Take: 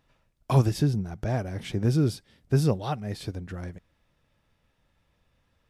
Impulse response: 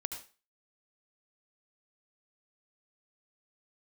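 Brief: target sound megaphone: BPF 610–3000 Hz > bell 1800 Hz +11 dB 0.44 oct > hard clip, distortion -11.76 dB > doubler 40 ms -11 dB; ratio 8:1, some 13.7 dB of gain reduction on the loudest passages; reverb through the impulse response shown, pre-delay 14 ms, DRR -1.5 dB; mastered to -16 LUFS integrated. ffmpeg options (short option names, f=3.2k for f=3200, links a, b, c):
-filter_complex "[0:a]acompressor=threshold=-28dB:ratio=8,asplit=2[a][b];[1:a]atrim=start_sample=2205,adelay=14[c];[b][c]afir=irnorm=-1:irlink=0,volume=1.5dB[d];[a][d]amix=inputs=2:normalize=0,highpass=610,lowpass=3k,equalizer=f=1.8k:t=o:w=0.44:g=11,asoftclip=type=hard:threshold=-31.5dB,asplit=2[e][f];[f]adelay=40,volume=-11dB[g];[e][g]amix=inputs=2:normalize=0,volume=23.5dB"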